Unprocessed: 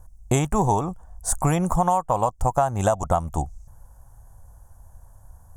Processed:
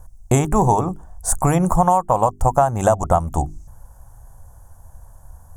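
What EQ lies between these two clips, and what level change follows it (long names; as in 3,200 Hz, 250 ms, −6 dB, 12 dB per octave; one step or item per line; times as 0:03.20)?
mains-hum notches 50/100/150/200/250/300/350/400 Hz
dynamic equaliser 3,600 Hz, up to −7 dB, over −44 dBFS, Q 0.89
+5.5 dB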